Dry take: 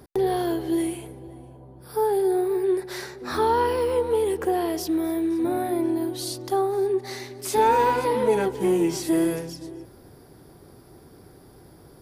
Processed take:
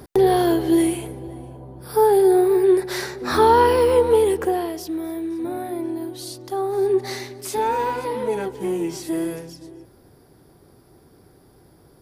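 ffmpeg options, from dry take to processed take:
-af "volume=16dB,afade=t=out:st=4.12:d=0.62:silence=0.316228,afade=t=in:st=6.55:d=0.47:silence=0.354813,afade=t=out:st=7.02:d=0.57:silence=0.354813"

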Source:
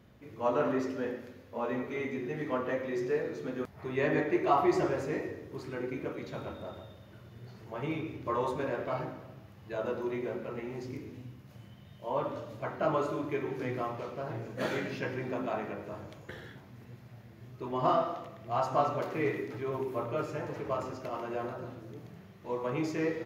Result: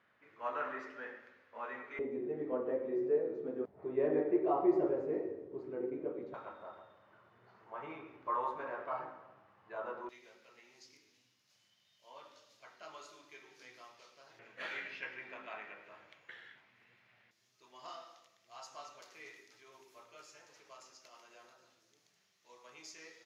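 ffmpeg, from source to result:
-af "asetnsamples=n=441:p=0,asendcmd='1.99 bandpass f 430;6.34 bandpass f 1100;10.09 bandpass f 5400;14.39 bandpass f 2300;17.31 bandpass f 6000',bandpass=f=1.6k:t=q:w=1.7:csg=0"

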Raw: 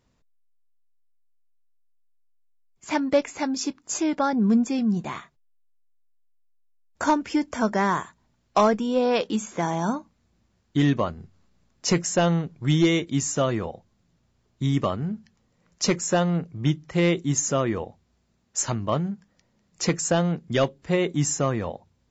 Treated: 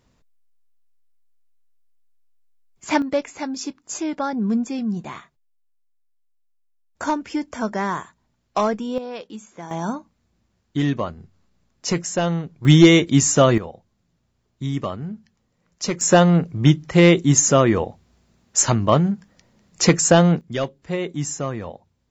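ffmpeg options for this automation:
-af "asetnsamples=n=441:p=0,asendcmd='3.02 volume volume -1.5dB;8.98 volume volume -10.5dB;9.71 volume volume -0.5dB;12.65 volume volume 9dB;13.58 volume volume -2dB;16.01 volume volume 8.5dB;20.41 volume volume -2.5dB',volume=5.5dB"

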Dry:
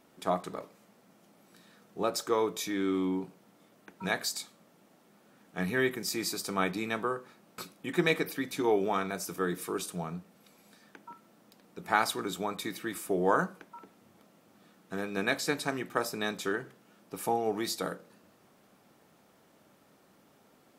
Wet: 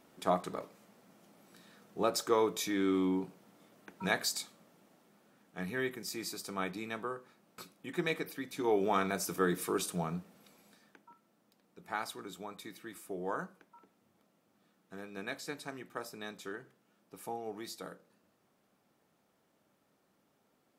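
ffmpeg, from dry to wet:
-af "volume=7.5dB,afade=t=out:st=4.4:d=1.2:silence=0.473151,afade=t=in:st=8.53:d=0.51:silence=0.398107,afade=t=out:st=10.18:d=0.89:silence=0.251189"

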